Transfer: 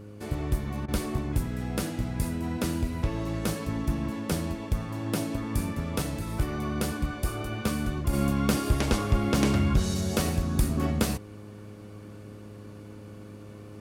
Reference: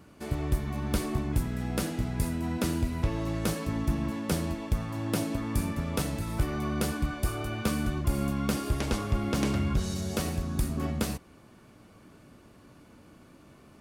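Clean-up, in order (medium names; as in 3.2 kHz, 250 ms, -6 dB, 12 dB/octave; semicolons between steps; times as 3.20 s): de-hum 103.9 Hz, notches 5; interpolate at 0.86 s, 21 ms; trim 0 dB, from 8.13 s -4 dB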